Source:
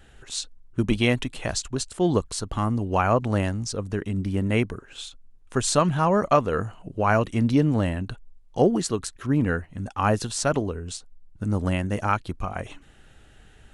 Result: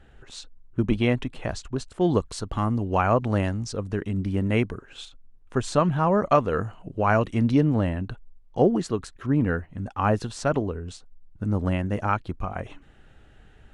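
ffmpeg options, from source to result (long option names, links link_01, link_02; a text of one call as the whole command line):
ffmpeg -i in.wav -af "asetnsamples=nb_out_samples=441:pad=0,asendcmd='2.01 lowpass f 3900;5.05 lowpass f 1800;6.26 lowpass f 3800;7.61 lowpass f 2100',lowpass=frequency=1600:poles=1" out.wav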